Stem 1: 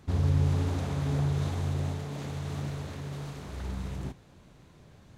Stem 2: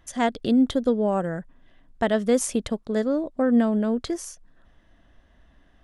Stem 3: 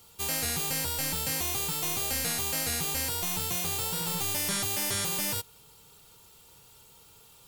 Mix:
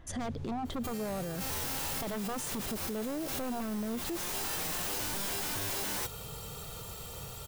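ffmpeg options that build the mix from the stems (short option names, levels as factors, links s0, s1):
-filter_complex "[0:a]volume=0.15[s0];[1:a]aeval=exprs='0.106*(abs(mod(val(0)/0.106+3,4)-2)-1)':c=same,volume=1.33[s1];[2:a]aecho=1:1:1.6:0.44,dynaudnorm=f=130:g=11:m=2.11,aeval=exprs='0.237*sin(PI/2*5.62*val(0)/0.237)':c=same,adelay=650,volume=0.237[s2];[s1][s2]amix=inputs=2:normalize=0,tiltshelf=f=1300:g=4,acompressor=threshold=0.0447:ratio=6,volume=1[s3];[s0][s3]amix=inputs=2:normalize=0,alimiter=level_in=1.78:limit=0.0631:level=0:latency=1:release=14,volume=0.562"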